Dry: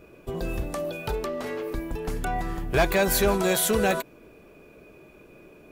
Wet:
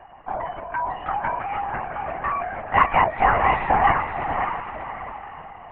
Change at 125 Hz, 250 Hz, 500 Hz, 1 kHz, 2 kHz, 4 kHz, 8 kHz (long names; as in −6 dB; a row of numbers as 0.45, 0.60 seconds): −1.5 dB, −6.0 dB, −3.0 dB, +13.0 dB, +5.0 dB, −7.0 dB, below −40 dB